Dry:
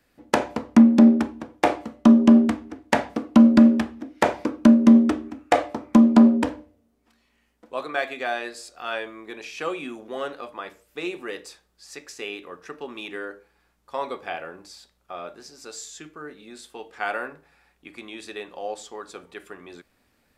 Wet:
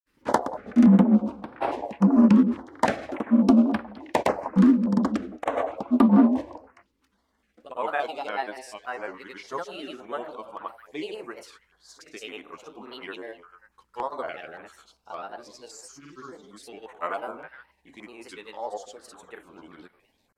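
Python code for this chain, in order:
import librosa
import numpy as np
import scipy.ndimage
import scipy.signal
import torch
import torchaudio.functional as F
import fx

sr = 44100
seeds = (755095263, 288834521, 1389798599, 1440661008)

p1 = x + fx.echo_stepped(x, sr, ms=144, hz=660.0, octaves=1.4, feedback_pct=70, wet_db=-9, dry=0)
p2 = fx.granulator(p1, sr, seeds[0], grain_ms=100.0, per_s=20.0, spray_ms=100.0, spread_st=3)
p3 = fx.peak_eq(p2, sr, hz=980.0, db=6.5, octaves=0.97)
p4 = fx.filter_held_notch(p3, sr, hz=3.5, low_hz=690.0, high_hz=6700.0)
y = F.gain(torch.from_numpy(p4), -3.0).numpy()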